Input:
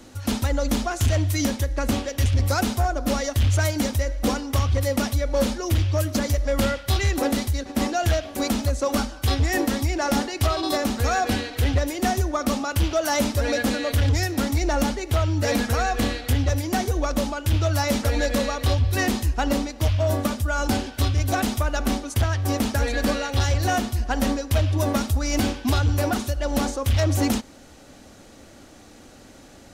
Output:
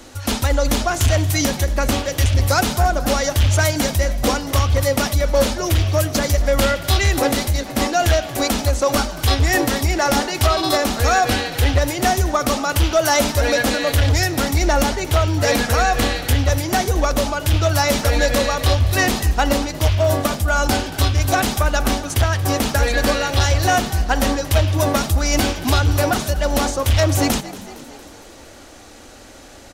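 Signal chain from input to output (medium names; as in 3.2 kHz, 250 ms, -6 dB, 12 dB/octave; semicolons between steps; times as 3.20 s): peaking EQ 170 Hz -9 dB 1.6 oct; frequency-shifting echo 230 ms, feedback 60%, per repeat +47 Hz, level -17.5 dB; trim +7.5 dB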